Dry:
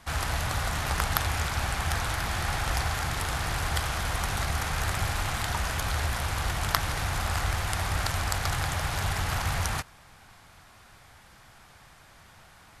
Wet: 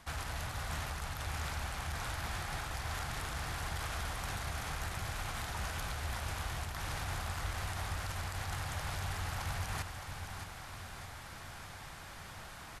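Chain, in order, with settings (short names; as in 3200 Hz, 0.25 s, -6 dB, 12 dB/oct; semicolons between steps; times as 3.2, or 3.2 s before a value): reverse; compressor 16:1, threshold -38 dBFS, peak gain reduction 21 dB; reverse; limiter -33.5 dBFS, peak gain reduction 11 dB; feedback echo 0.616 s, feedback 56%, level -8.5 dB; gain +4 dB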